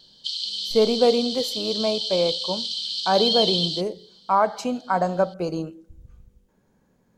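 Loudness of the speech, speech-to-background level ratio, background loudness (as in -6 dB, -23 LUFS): -24.0 LUFS, 1.0 dB, -25.0 LUFS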